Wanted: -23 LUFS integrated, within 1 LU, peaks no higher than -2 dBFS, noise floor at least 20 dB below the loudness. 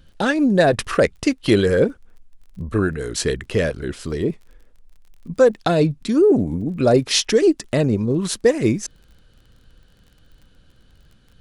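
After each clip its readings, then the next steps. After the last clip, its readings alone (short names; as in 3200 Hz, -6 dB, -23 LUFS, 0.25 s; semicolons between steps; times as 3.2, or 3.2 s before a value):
ticks 30/s; loudness -19.0 LUFS; peak -3.5 dBFS; loudness target -23.0 LUFS
-> de-click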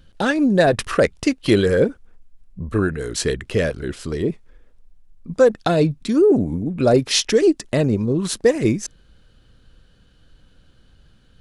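ticks 0/s; loudness -19.0 LUFS; peak -3.5 dBFS; loudness target -23.0 LUFS
-> gain -4 dB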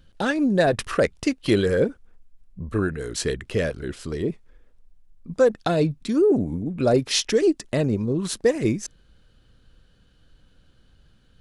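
loudness -23.0 LUFS; peak -7.5 dBFS; noise floor -58 dBFS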